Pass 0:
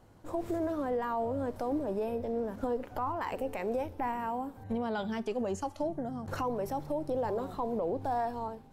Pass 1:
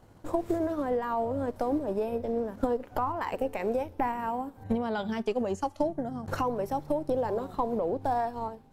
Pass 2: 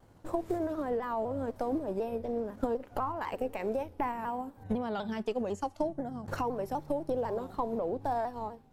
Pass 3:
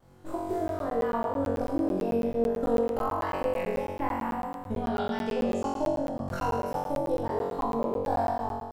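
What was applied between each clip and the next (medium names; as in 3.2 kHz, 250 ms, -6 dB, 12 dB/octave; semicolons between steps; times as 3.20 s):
transient shaper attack +5 dB, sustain -5 dB; trim +2.5 dB
vibrato with a chosen wave saw down 4 Hz, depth 100 cents; trim -3.5 dB
flutter echo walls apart 3.7 m, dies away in 1.3 s; crackling interface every 0.11 s, samples 512, zero, from 0.68 s; trim -2 dB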